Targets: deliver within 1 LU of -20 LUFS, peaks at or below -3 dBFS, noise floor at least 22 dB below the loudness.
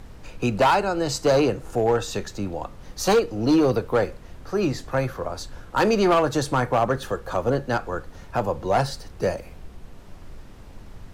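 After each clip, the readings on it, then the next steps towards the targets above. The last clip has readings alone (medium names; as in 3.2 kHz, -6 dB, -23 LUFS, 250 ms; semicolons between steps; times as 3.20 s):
clipped samples 1.2%; clipping level -13.5 dBFS; noise floor -44 dBFS; noise floor target -46 dBFS; loudness -23.5 LUFS; peak level -13.5 dBFS; loudness target -20.0 LUFS
-> clip repair -13.5 dBFS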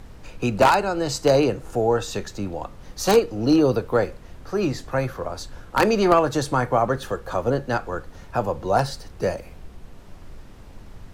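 clipped samples 0.0%; noise floor -44 dBFS; noise floor target -45 dBFS
-> noise print and reduce 6 dB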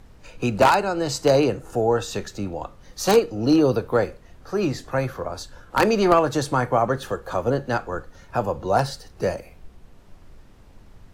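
noise floor -50 dBFS; loudness -22.5 LUFS; peak level -4.5 dBFS; loudness target -20.0 LUFS
-> trim +2.5 dB; peak limiter -3 dBFS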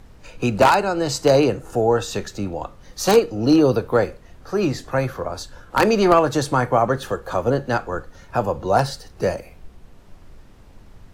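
loudness -20.0 LUFS; peak level -3.0 dBFS; noise floor -47 dBFS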